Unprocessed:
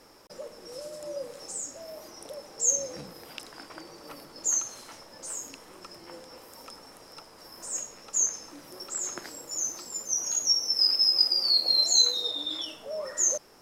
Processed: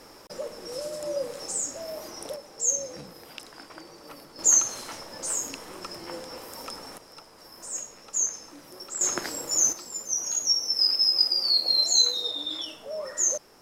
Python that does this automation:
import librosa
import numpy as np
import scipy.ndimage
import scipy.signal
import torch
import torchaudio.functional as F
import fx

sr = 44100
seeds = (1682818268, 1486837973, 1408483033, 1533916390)

y = fx.gain(x, sr, db=fx.steps((0.0, 6.0), (2.36, -0.5), (4.39, 7.5), (6.98, -0.5), (9.01, 8.5), (9.73, 0.5)))